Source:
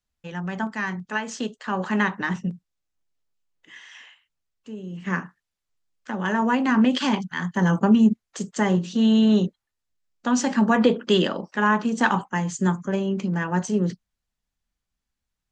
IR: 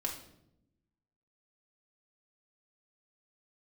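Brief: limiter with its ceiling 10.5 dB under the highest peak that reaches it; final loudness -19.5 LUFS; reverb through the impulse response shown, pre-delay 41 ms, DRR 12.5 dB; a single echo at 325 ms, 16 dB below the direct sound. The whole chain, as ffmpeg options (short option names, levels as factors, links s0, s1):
-filter_complex "[0:a]alimiter=limit=0.15:level=0:latency=1,aecho=1:1:325:0.158,asplit=2[s0][s1];[1:a]atrim=start_sample=2205,adelay=41[s2];[s1][s2]afir=irnorm=-1:irlink=0,volume=0.188[s3];[s0][s3]amix=inputs=2:normalize=0,volume=2.11"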